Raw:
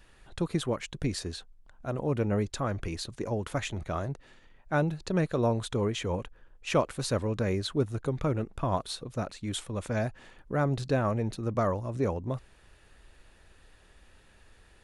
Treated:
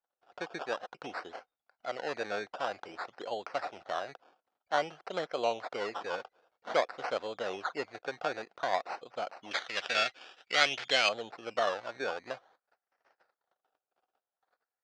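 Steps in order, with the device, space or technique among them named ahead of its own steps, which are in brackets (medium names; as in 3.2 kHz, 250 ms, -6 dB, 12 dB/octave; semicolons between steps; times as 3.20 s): gate -52 dBFS, range -32 dB; circuit-bent sampling toy (decimation with a swept rate 17×, swing 60% 0.52 Hz; cabinet simulation 510–5300 Hz, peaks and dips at 510 Hz +4 dB, 740 Hz +10 dB, 1.4 kHz +7 dB); 9.51–11.09 s: resonant high shelf 1.5 kHz +13 dB, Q 1.5; trim -4.5 dB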